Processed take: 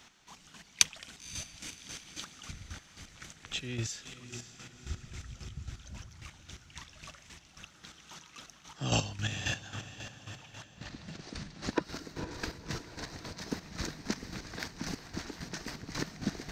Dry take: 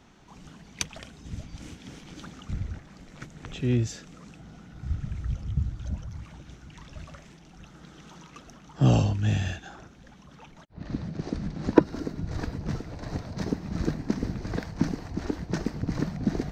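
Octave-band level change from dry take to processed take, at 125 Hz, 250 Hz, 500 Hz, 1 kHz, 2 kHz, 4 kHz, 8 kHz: -12.5 dB, -12.0 dB, -11.0 dB, -5.5 dB, +1.0 dB, +5.0 dB, +7.0 dB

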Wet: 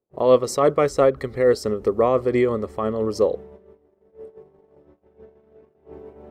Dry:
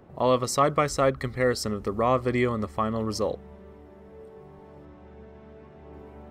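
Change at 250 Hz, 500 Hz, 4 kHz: +3.0 dB, +7.5 dB, -2.0 dB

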